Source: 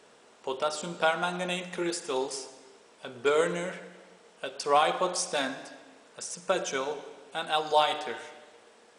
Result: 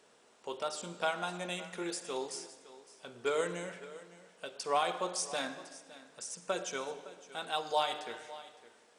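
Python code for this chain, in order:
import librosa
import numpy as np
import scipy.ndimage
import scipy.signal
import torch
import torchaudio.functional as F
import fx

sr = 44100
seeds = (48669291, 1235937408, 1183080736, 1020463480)

y = fx.high_shelf(x, sr, hz=5400.0, db=4.5)
y = y + 10.0 ** (-17.0 / 20.0) * np.pad(y, (int(561 * sr / 1000.0), 0))[:len(y)]
y = y * 10.0 ** (-7.5 / 20.0)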